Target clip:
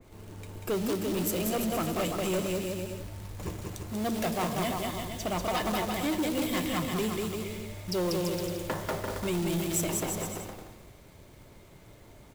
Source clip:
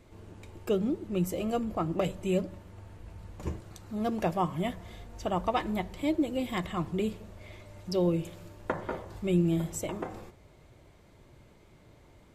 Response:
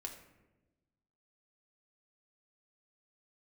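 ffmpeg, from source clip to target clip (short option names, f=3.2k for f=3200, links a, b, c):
-filter_complex "[0:a]highshelf=f=11k:g=11,asplit=2[a][b];[1:a]atrim=start_sample=2205[c];[b][c]afir=irnorm=-1:irlink=0,volume=-7dB[d];[a][d]amix=inputs=2:normalize=0,acrossover=split=240|3000[e][f][g];[e]acompressor=threshold=-33dB:ratio=6[h];[h][f][g]amix=inputs=3:normalize=0,acrusher=bits=3:mode=log:mix=0:aa=0.000001,aecho=1:1:190|342|463.6|560.9|638.7:0.631|0.398|0.251|0.158|0.1,asoftclip=type=tanh:threshold=-24.5dB,adynamicequalizer=threshold=0.00501:dfrequency=2200:dqfactor=0.7:tfrequency=2200:tqfactor=0.7:attack=5:release=100:ratio=0.375:range=2.5:mode=boostabove:tftype=highshelf"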